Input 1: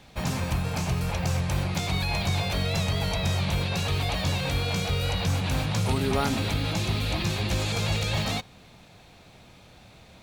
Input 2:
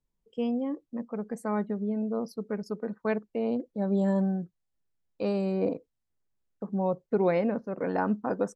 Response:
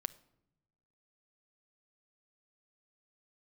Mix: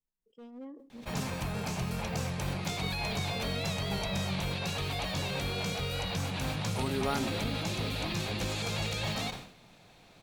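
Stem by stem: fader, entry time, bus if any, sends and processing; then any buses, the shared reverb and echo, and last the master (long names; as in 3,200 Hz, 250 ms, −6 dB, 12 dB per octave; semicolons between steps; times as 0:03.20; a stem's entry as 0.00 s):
−5.0 dB, 0.90 s, no send, no processing
−11.5 dB, 0.00 s, send −5.5 dB, hard clipping −26.5 dBFS, distortion −10 dB; amplitude modulation by smooth noise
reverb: on, pre-delay 6 ms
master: parametric band 71 Hz −9.5 dB 0.97 octaves; level that may fall only so fast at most 89 dB per second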